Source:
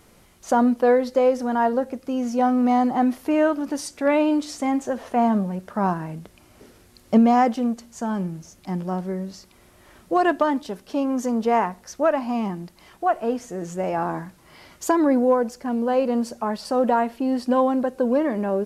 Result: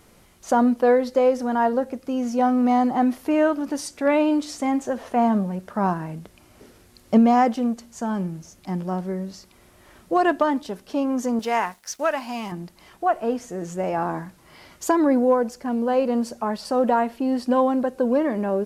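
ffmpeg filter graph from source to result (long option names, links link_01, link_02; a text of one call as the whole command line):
ffmpeg -i in.wav -filter_complex "[0:a]asettb=1/sr,asplit=3[link_01][link_02][link_03];[link_01]atrim=end=11.394[link_04];[link_02]atrim=start=11.39:end=12.52,asetpts=PTS-STARTPTS,afade=type=in:duration=0.004:curve=qsin,afade=type=out:start_time=1.126:duration=0.004:curve=qsin,tiltshelf=frequency=1100:gain=-8,bandreject=frequency=1200:width=20,aeval=exprs='sgn(val(0))*max(abs(val(0))-0.00211,0)':channel_layout=same[link_05];[link_03]atrim=start=12.516[link_06];[link_04][link_05]acrossfade=duration=0.004:curve1=hsin:curve2=qsin[link_07];[link_07][link_06]acrossfade=duration=0.004:curve1=qsin:curve2=hsin" out.wav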